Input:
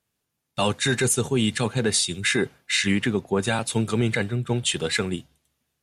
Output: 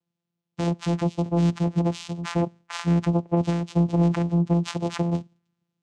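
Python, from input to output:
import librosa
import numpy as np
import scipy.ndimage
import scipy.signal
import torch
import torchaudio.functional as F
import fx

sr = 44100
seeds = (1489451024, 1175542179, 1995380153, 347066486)

y = fx.rider(x, sr, range_db=10, speed_s=0.5)
y = fx.env_phaser(y, sr, low_hz=350.0, high_hz=1300.0, full_db=-28.5)
y = fx.vocoder(y, sr, bands=4, carrier='saw', carrier_hz=171.0)
y = F.gain(torch.from_numpy(y), 2.5).numpy()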